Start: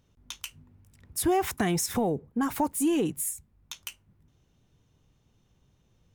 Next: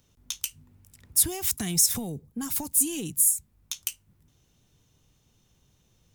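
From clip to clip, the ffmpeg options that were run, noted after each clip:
ffmpeg -i in.wav -filter_complex "[0:a]highshelf=frequency=3600:gain=12,acrossover=split=220|3000[link_01][link_02][link_03];[link_02]acompressor=threshold=-51dB:ratio=2[link_04];[link_01][link_04][link_03]amix=inputs=3:normalize=0" out.wav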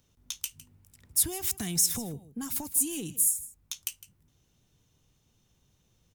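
ffmpeg -i in.wav -af "aecho=1:1:157:0.141,volume=-3.5dB" out.wav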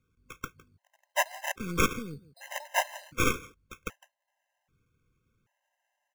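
ffmpeg -i in.wav -af "acrusher=samples=10:mix=1:aa=0.000001,aeval=exprs='0.237*(cos(1*acos(clip(val(0)/0.237,-1,1)))-cos(1*PI/2))+0.0668*(cos(4*acos(clip(val(0)/0.237,-1,1)))-cos(4*PI/2))+0.00944*(cos(5*acos(clip(val(0)/0.237,-1,1)))-cos(5*PI/2))+0.0188*(cos(7*acos(clip(val(0)/0.237,-1,1)))-cos(7*PI/2))':channel_layout=same,afftfilt=real='re*gt(sin(2*PI*0.64*pts/sr)*(1-2*mod(floor(b*sr/1024/530),2)),0)':imag='im*gt(sin(2*PI*0.64*pts/sr)*(1-2*mod(floor(b*sr/1024/530),2)),0)':win_size=1024:overlap=0.75" out.wav

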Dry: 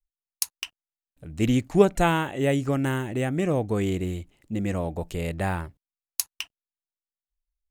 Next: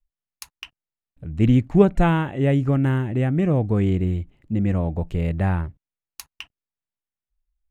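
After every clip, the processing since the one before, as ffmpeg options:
ffmpeg -i in.wav -af "bass=frequency=250:gain=9,treble=frequency=4000:gain=-14" out.wav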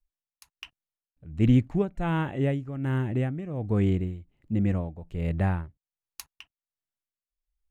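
ffmpeg -i in.wav -af "tremolo=f=1.3:d=0.79,volume=-3dB" out.wav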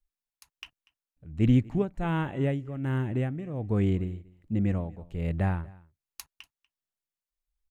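ffmpeg -i in.wav -af "aecho=1:1:241:0.0668,volume=-1.5dB" out.wav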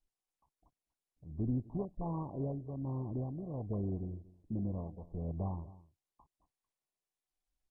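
ffmpeg -i in.wav -af "acompressor=threshold=-32dB:ratio=2,volume=-5dB" -ar 24000 -c:a mp2 -b:a 8k out.mp2

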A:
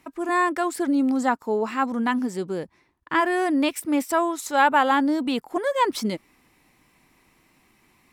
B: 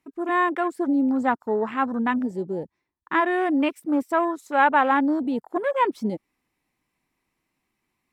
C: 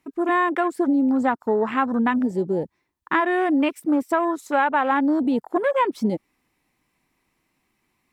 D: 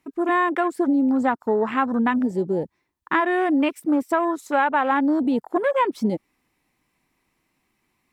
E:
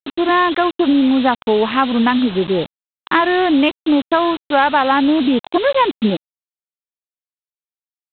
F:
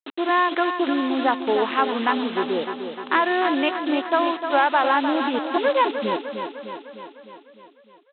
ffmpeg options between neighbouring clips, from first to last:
ffmpeg -i in.wav -af "afwtdn=0.0251" out.wav
ffmpeg -i in.wav -af "acompressor=threshold=-23dB:ratio=5,volume=6dB" out.wav
ffmpeg -i in.wav -af anull out.wav
ffmpeg -i in.wav -af "aresample=8000,acrusher=bits=5:mix=0:aa=0.000001,aresample=44100,aexciter=amount=2.6:drive=5.5:freq=2900,volume=6dB" out.wav
ffmpeg -i in.wav -filter_complex "[0:a]highpass=370,lowpass=3300,asplit=2[link_01][link_02];[link_02]aecho=0:1:303|606|909|1212|1515|1818|2121|2424:0.398|0.239|0.143|0.086|0.0516|0.031|0.0186|0.0111[link_03];[link_01][link_03]amix=inputs=2:normalize=0,volume=-4.5dB" out.wav

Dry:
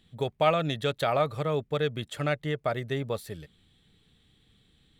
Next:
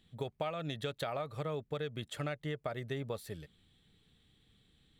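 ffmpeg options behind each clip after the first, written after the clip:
ffmpeg -i in.wav -af "acompressor=threshold=-29dB:ratio=10,volume=-4.5dB" out.wav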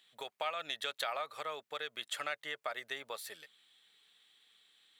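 ffmpeg -i in.wav -af "highpass=1000,volume=6dB" out.wav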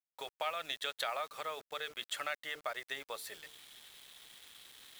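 ffmpeg -i in.wav -af "bandreject=frequency=50:width_type=h:width=6,bandreject=frequency=100:width_type=h:width=6,bandreject=frequency=150:width_type=h:width=6,bandreject=frequency=200:width_type=h:width=6,bandreject=frequency=250:width_type=h:width=6,bandreject=frequency=300:width_type=h:width=6,bandreject=frequency=350:width_type=h:width=6,bandreject=frequency=400:width_type=h:width=6,bandreject=frequency=450:width_type=h:width=6,areverse,acompressor=mode=upward:threshold=-46dB:ratio=2.5,areverse,acrusher=bits=8:mix=0:aa=0.000001" out.wav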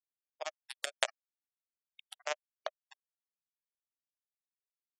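ffmpeg -i in.wav -af "acrusher=bits=3:mix=0:aa=0.5,afftfilt=real='re*gte(hypot(re,im),0.00224)':imag='im*gte(hypot(re,im),0.00224)':win_size=1024:overlap=0.75,highpass=frequency=610:width_type=q:width=6.7,volume=10.5dB" out.wav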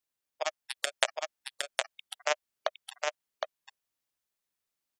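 ffmpeg -i in.wav -filter_complex "[0:a]asplit=2[link_01][link_02];[link_02]alimiter=limit=-17dB:level=0:latency=1:release=154,volume=-2dB[link_03];[link_01][link_03]amix=inputs=2:normalize=0,aecho=1:1:763:0.668,volume=2.5dB" out.wav

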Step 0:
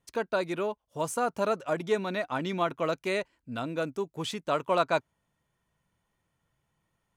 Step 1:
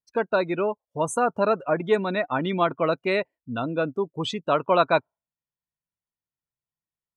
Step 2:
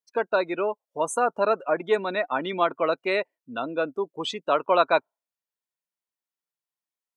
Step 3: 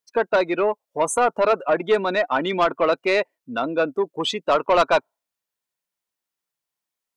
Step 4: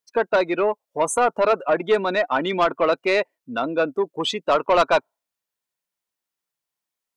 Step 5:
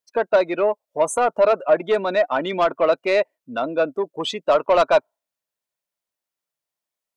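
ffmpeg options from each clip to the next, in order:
ffmpeg -i in.wav -af "afftdn=noise_reduction=29:noise_floor=-40,volume=6dB" out.wav
ffmpeg -i in.wav -af "highpass=330" out.wav
ffmpeg -i in.wav -af "asoftclip=type=tanh:threshold=-17dB,volume=6.5dB" out.wav
ffmpeg -i in.wav -af anull out.wav
ffmpeg -i in.wav -af "equalizer=frequency=610:width=4:gain=7,volume=-2dB" out.wav

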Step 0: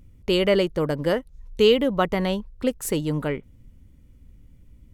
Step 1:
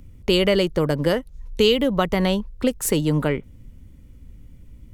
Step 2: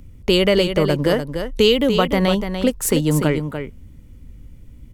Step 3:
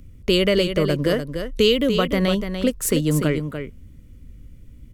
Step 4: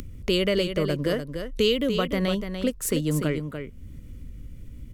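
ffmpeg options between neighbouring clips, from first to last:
ffmpeg -i in.wav -filter_complex "[0:a]acrossover=split=160|3000[link_01][link_02][link_03];[link_02]acompressor=threshold=-24dB:ratio=3[link_04];[link_01][link_04][link_03]amix=inputs=3:normalize=0,volume=6dB" out.wav
ffmpeg -i in.wav -af "aecho=1:1:293:0.398,volume=2.5dB" out.wav
ffmpeg -i in.wav -af "equalizer=frequency=850:width=5:gain=-14.5,volume=-2dB" out.wav
ffmpeg -i in.wav -af "acompressor=mode=upward:threshold=-24dB:ratio=2.5,volume=-5dB" out.wav

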